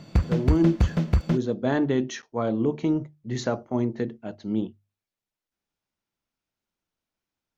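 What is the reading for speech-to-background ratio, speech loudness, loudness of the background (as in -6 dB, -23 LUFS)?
-2.0 dB, -27.5 LUFS, -25.5 LUFS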